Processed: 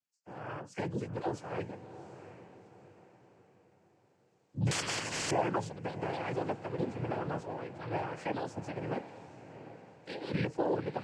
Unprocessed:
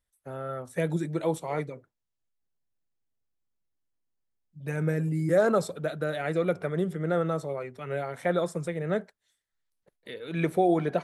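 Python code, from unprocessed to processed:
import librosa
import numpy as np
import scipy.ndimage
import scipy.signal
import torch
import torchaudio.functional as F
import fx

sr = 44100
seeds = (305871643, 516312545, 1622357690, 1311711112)

y = fx.freq_compress(x, sr, knee_hz=3900.0, ratio=1.5)
y = fx.recorder_agc(y, sr, target_db=-15.0, rise_db_per_s=7.1, max_gain_db=30)
y = fx.noise_vocoder(y, sr, seeds[0], bands=8)
y = fx.echo_diffused(y, sr, ms=741, feedback_pct=42, wet_db=-12.5)
y = fx.spectral_comp(y, sr, ratio=10.0, at=(4.71, 5.31))
y = y * librosa.db_to_amplitude(-9.0)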